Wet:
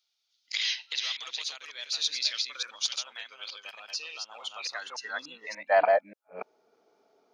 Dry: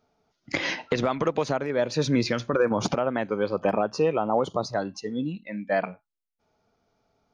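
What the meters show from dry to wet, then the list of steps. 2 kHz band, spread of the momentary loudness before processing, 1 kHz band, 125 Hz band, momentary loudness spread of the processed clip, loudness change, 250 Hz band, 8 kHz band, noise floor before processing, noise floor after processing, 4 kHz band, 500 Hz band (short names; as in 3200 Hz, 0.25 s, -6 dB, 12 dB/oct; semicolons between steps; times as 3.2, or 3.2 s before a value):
-2.0 dB, 7 LU, -4.0 dB, under -35 dB, 15 LU, -4.0 dB, -29.5 dB, n/a, -80 dBFS, -79 dBFS, +7.5 dB, -7.0 dB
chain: reverse delay 0.292 s, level -4 dB; high-pass sweep 3600 Hz -> 370 Hz, 4.25–6.54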